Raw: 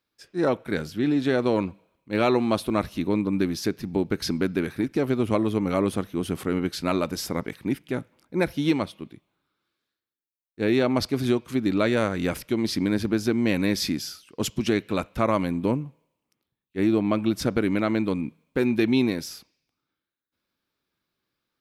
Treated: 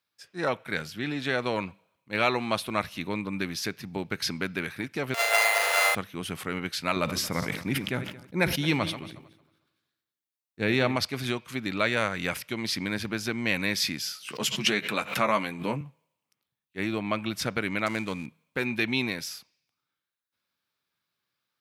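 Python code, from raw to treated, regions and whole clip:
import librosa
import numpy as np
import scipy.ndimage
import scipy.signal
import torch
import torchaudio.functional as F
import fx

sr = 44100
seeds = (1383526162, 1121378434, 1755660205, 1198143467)

y = fx.chain(x, sr, fx.sample_sort(block=64),
    fx.steep_highpass(hz=470.0, slope=48),
    fx.room_flutter(wall_m=6.3, rt60_s=1.1), at=(5.14, 5.95))
y = fx.chain(y, sr, fx.reverse_delay_fb(ms=113, feedback_pct=48, wet_db=-14),
    fx.low_shelf(hz=350.0, db=7.0),
    fx.sustainer(db_per_s=80.0), at=(6.96, 10.96))
y = fx.chain(y, sr, fx.highpass(hz=120.0, slope=24),
    fx.doubler(ms=14.0, db=-6.0),
    fx.pre_swell(db_per_s=130.0), at=(14.02, 15.81))
y = fx.chain(y, sr, fx.dead_time(dead_ms=0.089),
    fx.lowpass(hz=12000.0, slope=12),
    fx.notch(hz=5300.0, q=12.0), at=(17.86, 18.26))
y = fx.dynamic_eq(y, sr, hz=2300.0, q=1.1, threshold_db=-45.0, ratio=4.0, max_db=5)
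y = scipy.signal.sosfilt(scipy.signal.butter(2, 120.0, 'highpass', fs=sr, output='sos'), y)
y = fx.peak_eq(y, sr, hz=310.0, db=-11.0, octaves=1.6)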